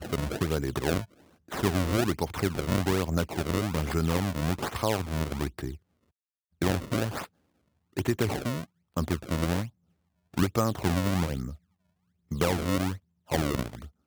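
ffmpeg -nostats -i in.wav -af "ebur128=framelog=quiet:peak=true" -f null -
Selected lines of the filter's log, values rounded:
Integrated loudness:
  I:         -29.7 LUFS
  Threshold: -40.0 LUFS
Loudness range:
  LRA:         4.1 LU
  Threshold: -50.5 LUFS
  LRA low:   -32.8 LUFS
  LRA high:  -28.7 LUFS
True peak:
  Peak:      -10.6 dBFS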